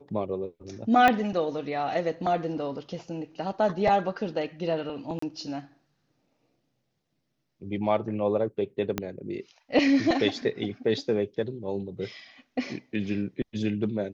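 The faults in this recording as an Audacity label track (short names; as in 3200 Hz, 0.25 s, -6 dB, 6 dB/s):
1.080000	1.080000	pop -9 dBFS
5.190000	5.220000	gap 34 ms
8.980000	8.980000	pop -12 dBFS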